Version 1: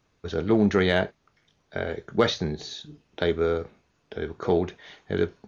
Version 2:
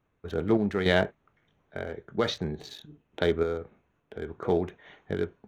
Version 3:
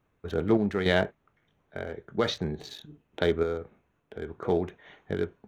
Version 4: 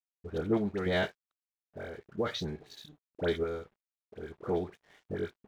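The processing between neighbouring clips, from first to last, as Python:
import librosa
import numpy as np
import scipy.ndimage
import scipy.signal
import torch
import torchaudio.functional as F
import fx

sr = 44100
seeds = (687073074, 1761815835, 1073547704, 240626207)

y1 = fx.wiener(x, sr, points=9)
y1 = fx.tremolo_random(y1, sr, seeds[0], hz=3.5, depth_pct=55)
y2 = fx.rider(y1, sr, range_db=4, speed_s=2.0)
y2 = y2 * librosa.db_to_amplitude(1.0)
y3 = fx.dispersion(y2, sr, late='highs', ms=69.0, hz=1300.0)
y3 = np.sign(y3) * np.maximum(np.abs(y3) - 10.0 ** (-56.5 / 20.0), 0.0)
y3 = y3 * librosa.db_to_amplitude(-5.0)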